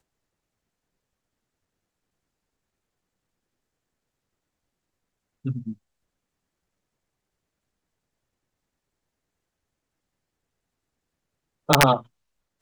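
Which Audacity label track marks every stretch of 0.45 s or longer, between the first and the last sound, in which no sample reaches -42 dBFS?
5.730000	11.690000	silence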